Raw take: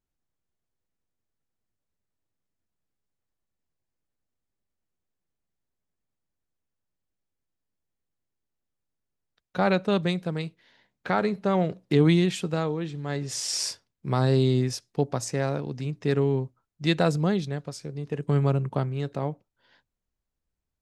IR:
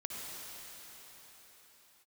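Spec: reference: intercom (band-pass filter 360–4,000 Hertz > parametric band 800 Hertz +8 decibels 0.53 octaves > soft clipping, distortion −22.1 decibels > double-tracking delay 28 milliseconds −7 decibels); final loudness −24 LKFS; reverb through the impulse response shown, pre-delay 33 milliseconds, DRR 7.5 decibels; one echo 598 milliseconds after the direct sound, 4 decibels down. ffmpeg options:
-filter_complex "[0:a]aecho=1:1:598:0.631,asplit=2[link_01][link_02];[1:a]atrim=start_sample=2205,adelay=33[link_03];[link_02][link_03]afir=irnorm=-1:irlink=0,volume=-9dB[link_04];[link_01][link_04]amix=inputs=2:normalize=0,highpass=360,lowpass=4000,equalizer=frequency=800:width_type=o:width=0.53:gain=8,asoftclip=threshold=-12dB,asplit=2[link_05][link_06];[link_06]adelay=28,volume=-7dB[link_07];[link_05][link_07]amix=inputs=2:normalize=0,volume=3dB"

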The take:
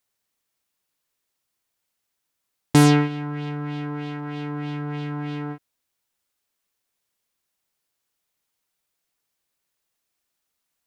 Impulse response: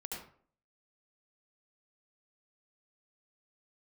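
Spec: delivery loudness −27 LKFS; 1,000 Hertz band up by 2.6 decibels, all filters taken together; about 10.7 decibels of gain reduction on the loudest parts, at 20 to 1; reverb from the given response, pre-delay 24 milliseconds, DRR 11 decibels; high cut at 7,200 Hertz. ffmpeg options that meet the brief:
-filter_complex "[0:a]lowpass=7200,equalizer=frequency=1000:width_type=o:gain=3.5,acompressor=threshold=-20dB:ratio=20,asplit=2[link_01][link_02];[1:a]atrim=start_sample=2205,adelay=24[link_03];[link_02][link_03]afir=irnorm=-1:irlink=0,volume=-10.5dB[link_04];[link_01][link_04]amix=inputs=2:normalize=0,volume=2.5dB"

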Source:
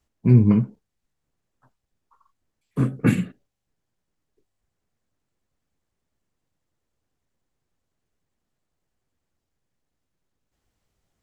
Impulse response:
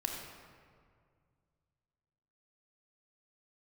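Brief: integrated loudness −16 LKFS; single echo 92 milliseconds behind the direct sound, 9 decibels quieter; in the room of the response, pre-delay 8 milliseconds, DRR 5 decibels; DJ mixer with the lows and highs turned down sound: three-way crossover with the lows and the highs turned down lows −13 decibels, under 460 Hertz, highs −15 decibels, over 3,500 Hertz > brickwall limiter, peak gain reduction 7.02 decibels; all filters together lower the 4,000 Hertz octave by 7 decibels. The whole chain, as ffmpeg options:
-filter_complex "[0:a]equalizer=frequency=4000:width_type=o:gain=-5.5,aecho=1:1:92:0.355,asplit=2[link_01][link_02];[1:a]atrim=start_sample=2205,adelay=8[link_03];[link_02][link_03]afir=irnorm=-1:irlink=0,volume=-7.5dB[link_04];[link_01][link_04]amix=inputs=2:normalize=0,acrossover=split=460 3500:gain=0.224 1 0.178[link_05][link_06][link_07];[link_05][link_06][link_07]amix=inputs=3:normalize=0,volume=18dB,alimiter=limit=-3dB:level=0:latency=1"

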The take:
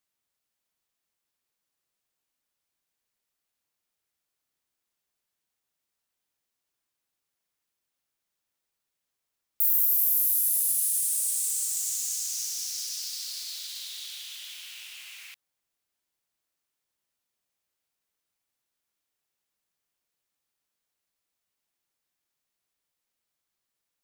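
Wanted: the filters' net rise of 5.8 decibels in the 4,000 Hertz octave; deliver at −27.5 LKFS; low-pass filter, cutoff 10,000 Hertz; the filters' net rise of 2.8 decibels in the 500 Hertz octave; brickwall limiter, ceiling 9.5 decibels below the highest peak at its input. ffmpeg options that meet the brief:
ffmpeg -i in.wav -af "lowpass=10000,equalizer=frequency=500:width_type=o:gain=3.5,equalizer=frequency=4000:width_type=o:gain=7.5,volume=5dB,alimiter=limit=-20.5dB:level=0:latency=1" out.wav

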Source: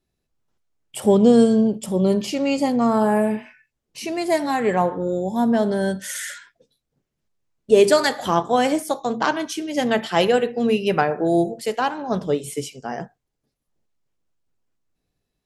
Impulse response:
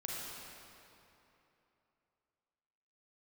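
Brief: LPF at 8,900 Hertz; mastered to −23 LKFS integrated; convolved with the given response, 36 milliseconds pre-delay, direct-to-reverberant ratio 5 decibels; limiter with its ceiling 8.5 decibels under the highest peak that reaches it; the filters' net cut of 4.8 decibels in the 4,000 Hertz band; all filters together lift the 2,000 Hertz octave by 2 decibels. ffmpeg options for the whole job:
-filter_complex "[0:a]lowpass=8900,equalizer=frequency=2000:width_type=o:gain=4.5,equalizer=frequency=4000:width_type=o:gain=-9,alimiter=limit=-11.5dB:level=0:latency=1,asplit=2[link_01][link_02];[1:a]atrim=start_sample=2205,adelay=36[link_03];[link_02][link_03]afir=irnorm=-1:irlink=0,volume=-6.5dB[link_04];[link_01][link_04]amix=inputs=2:normalize=0,volume=-1.5dB"

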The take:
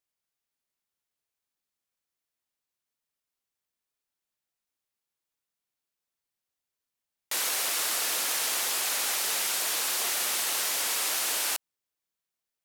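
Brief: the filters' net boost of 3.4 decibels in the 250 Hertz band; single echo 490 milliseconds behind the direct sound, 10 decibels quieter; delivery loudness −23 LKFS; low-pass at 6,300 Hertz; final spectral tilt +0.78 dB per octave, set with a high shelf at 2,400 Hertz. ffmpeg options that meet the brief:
ffmpeg -i in.wav -af "lowpass=6300,equalizer=frequency=250:width_type=o:gain=4.5,highshelf=frequency=2400:gain=7.5,aecho=1:1:490:0.316,volume=1.5dB" out.wav

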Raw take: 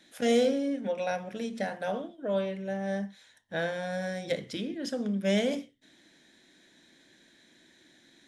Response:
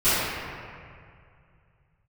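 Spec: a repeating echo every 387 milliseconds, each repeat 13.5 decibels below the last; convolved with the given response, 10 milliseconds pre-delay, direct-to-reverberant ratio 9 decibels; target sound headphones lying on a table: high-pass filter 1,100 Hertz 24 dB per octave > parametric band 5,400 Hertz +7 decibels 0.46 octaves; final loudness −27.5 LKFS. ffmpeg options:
-filter_complex "[0:a]aecho=1:1:387|774:0.211|0.0444,asplit=2[link_01][link_02];[1:a]atrim=start_sample=2205,adelay=10[link_03];[link_02][link_03]afir=irnorm=-1:irlink=0,volume=-28.5dB[link_04];[link_01][link_04]amix=inputs=2:normalize=0,highpass=frequency=1100:width=0.5412,highpass=frequency=1100:width=1.3066,equalizer=frequency=5400:width_type=o:width=0.46:gain=7,volume=11.5dB"

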